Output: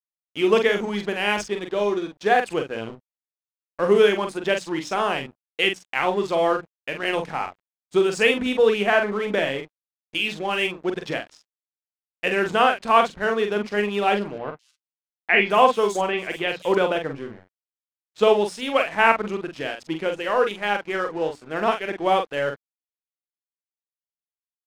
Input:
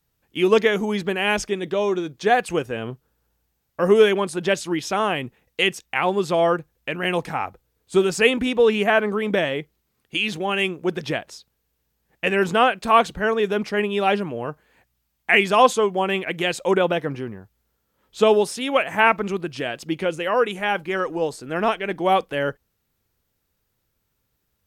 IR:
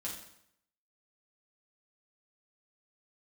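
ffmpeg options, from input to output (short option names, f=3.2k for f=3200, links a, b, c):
-filter_complex "[0:a]lowshelf=f=130:g=-6,bandreject=f=60:t=h:w=6,bandreject=f=120:t=h:w=6,bandreject=f=180:t=h:w=6,bandreject=f=240:t=h:w=6,bandreject=f=300:t=h:w=6,aeval=exprs='sgn(val(0))*max(abs(val(0))-0.00944,0)':c=same,adynamicsmooth=sensitivity=5.5:basefreq=6.4k,asplit=2[a][b];[b]adelay=44,volume=-6dB[c];[a][c]amix=inputs=2:normalize=0,asettb=1/sr,asplit=3[d][e][f];[d]atrim=end=14.384[g];[e]atrim=start=14.38:end=16.75,asetpts=PTS-STARTPTS,afade=t=in:d=0.004:c=qsin,afade=t=out:st=2.366:d=0.004:c=qsin,acrossover=split=4100[h][i];[i]adelay=210[j];[h][j]amix=inputs=2:normalize=0,atrim=end_sample=104517[k];[f]atrim=start=16.746[l];[g][k]acrossfade=d=0.004:c1=hsin:c2=qsin[m];[m][l]acrossfade=d=0.004:c1=qsin:c2=hsin,volume=-1dB"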